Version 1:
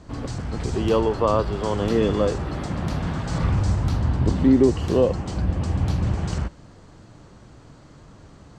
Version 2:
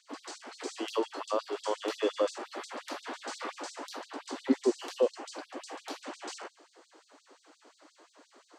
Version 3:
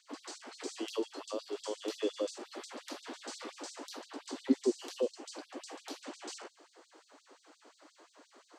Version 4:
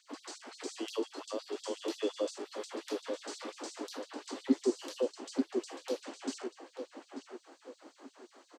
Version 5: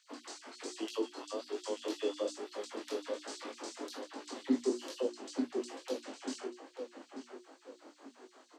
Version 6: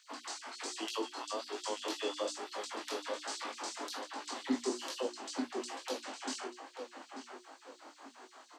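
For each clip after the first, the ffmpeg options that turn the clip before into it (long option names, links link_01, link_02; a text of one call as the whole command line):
ffmpeg -i in.wav -filter_complex "[0:a]acrossover=split=500|3000[link_01][link_02][link_03];[link_02]acompressor=threshold=-25dB:ratio=6[link_04];[link_01][link_04][link_03]amix=inputs=3:normalize=0,afftfilt=real='re*gte(b*sr/1024,240*pow(3700/240,0.5+0.5*sin(2*PI*5.7*pts/sr)))':imag='im*gte(b*sr/1024,240*pow(3700/240,0.5+0.5*sin(2*PI*5.7*pts/sr)))':win_size=1024:overlap=0.75,volume=-3.5dB" out.wav
ffmpeg -i in.wav -filter_complex "[0:a]acrossover=split=480|3000[link_01][link_02][link_03];[link_02]acompressor=threshold=-49dB:ratio=4[link_04];[link_01][link_04][link_03]amix=inputs=3:normalize=0,volume=-1dB" out.wav
ffmpeg -i in.wav -filter_complex "[0:a]asplit=2[link_01][link_02];[link_02]adelay=888,lowpass=frequency=1600:poles=1,volume=-4dB,asplit=2[link_03][link_04];[link_04]adelay=888,lowpass=frequency=1600:poles=1,volume=0.43,asplit=2[link_05][link_06];[link_06]adelay=888,lowpass=frequency=1600:poles=1,volume=0.43,asplit=2[link_07][link_08];[link_08]adelay=888,lowpass=frequency=1600:poles=1,volume=0.43,asplit=2[link_09][link_10];[link_10]adelay=888,lowpass=frequency=1600:poles=1,volume=0.43[link_11];[link_01][link_03][link_05][link_07][link_09][link_11]amix=inputs=6:normalize=0" out.wav
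ffmpeg -i in.wav -af "bandreject=frequency=60:width_type=h:width=6,bandreject=frequency=120:width_type=h:width=6,bandreject=frequency=180:width_type=h:width=6,bandreject=frequency=240:width_type=h:width=6,bandreject=frequency=300:width_type=h:width=6,bandreject=frequency=360:width_type=h:width=6,flanger=delay=18.5:depth=5.3:speed=1.2,volume=2dB" out.wav
ffmpeg -i in.wav -af "lowshelf=frequency=620:width_type=q:width=1.5:gain=-7,volume=5dB" out.wav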